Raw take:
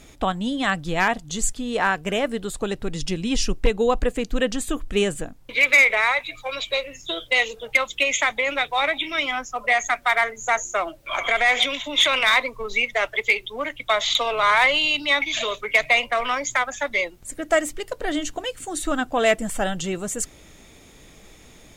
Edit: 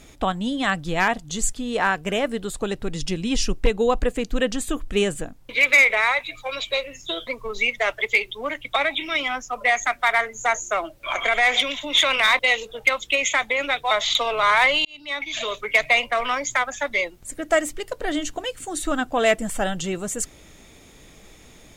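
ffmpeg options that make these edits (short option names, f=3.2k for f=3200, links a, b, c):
-filter_complex "[0:a]asplit=6[a][b][c][d][e][f];[a]atrim=end=7.272[g];[b]atrim=start=12.418:end=13.912[h];[c]atrim=start=8.788:end=12.422[i];[d]atrim=start=7.268:end=8.792[j];[e]atrim=start=13.908:end=14.85,asetpts=PTS-STARTPTS,afade=t=out:st=0.938:d=0.004:c=hsin[k];[f]atrim=start=14.85,asetpts=PTS-STARTPTS,afade=t=in:d=0.75[l];[g][h]acrossfade=d=0.004:c1=hsin:c2=hsin[m];[m][i]acrossfade=d=0.004:c1=hsin:c2=hsin[n];[n][j]acrossfade=d=0.004:c1=hsin:c2=hsin[o];[k][l]concat=n=2:v=0:a=1[p];[o][p]acrossfade=d=0.004:c1=hsin:c2=hsin"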